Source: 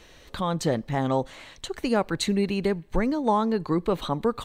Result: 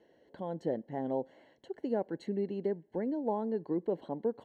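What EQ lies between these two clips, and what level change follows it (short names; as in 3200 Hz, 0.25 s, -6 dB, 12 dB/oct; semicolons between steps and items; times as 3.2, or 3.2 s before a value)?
running mean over 36 samples; HPF 290 Hz 12 dB/oct; -4.0 dB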